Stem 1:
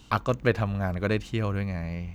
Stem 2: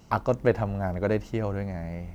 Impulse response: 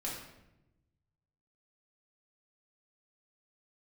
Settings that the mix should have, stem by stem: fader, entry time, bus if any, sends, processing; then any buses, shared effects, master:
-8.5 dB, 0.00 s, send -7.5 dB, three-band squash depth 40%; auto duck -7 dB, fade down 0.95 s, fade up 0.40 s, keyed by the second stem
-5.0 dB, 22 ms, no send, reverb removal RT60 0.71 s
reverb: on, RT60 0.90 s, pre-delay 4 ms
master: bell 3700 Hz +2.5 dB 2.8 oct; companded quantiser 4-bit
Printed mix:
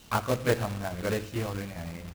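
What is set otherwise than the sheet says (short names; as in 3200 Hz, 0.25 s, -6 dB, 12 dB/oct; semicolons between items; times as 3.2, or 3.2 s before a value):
stem 1: missing three-band squash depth 40%; stem 2: polarity flipped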